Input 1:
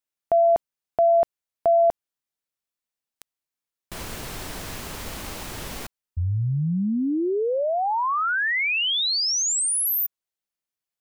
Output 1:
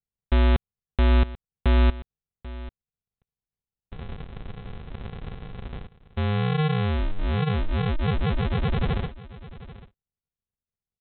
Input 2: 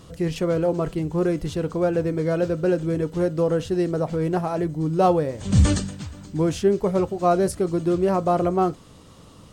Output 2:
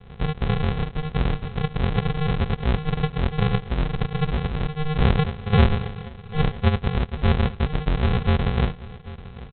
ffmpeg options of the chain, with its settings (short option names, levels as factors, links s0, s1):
-af "aresample=8000,acrusher=samples=26:mix=1:aa=0.000001,aresample=44100,aecho=1:1:789:0.133"